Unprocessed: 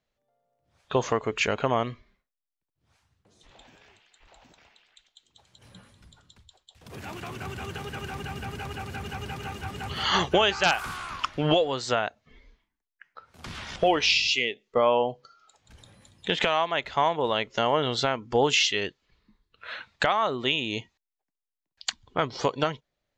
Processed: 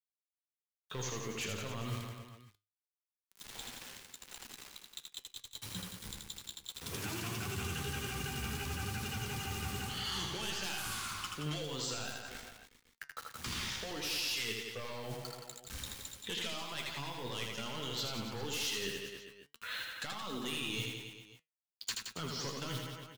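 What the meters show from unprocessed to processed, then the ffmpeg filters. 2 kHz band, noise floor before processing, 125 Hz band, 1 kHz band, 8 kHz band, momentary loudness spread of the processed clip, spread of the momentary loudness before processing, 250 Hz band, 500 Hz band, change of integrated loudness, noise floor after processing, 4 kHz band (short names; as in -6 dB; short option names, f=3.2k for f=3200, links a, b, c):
-11.5 dB, under -85 dBFS, -5.5 dB, -17.0 dB, -2.5 dB, 12 LU, 15 LU, -10.5 dB, -18.0 dB, -13.0 dB, under -85 dBFS, -9.5 dB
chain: -filter_complex "[0:a]highshelf=f=4k:g=11,asplit=2[a][b];[b]aeval=exprs='0.596*sin(PI/2*5.01*val(0)/0.596)':c=same,volume=-11dB[c];[a][c]amix=inputs=2:normalize=0,flanger=delay=8.8:depth=7.3:regen=42:speed=0.55:shape=sinusoidal,acrusher=bits=6:mix=0:aa=0.000001,areverse,acompressor=threshold=-33dB:ratio=10,areverse,flanger=delay=3.7:depth=6.1:regen=80:speed=0.25:shape=sinusoidal,aecho=1:1:80|172|277.8|399.5|539.4:0.631|0.398|0.251|0.158|0.1,acrossover=split=320|3000[d][e][f];[e]acompressor=threshold=-43dB:ratio=6[g];[d][g][f]amix=inputs=3:normalize=0,equalizer=f=650:t=o:w=0.52:g=-6.5,volume=2dB"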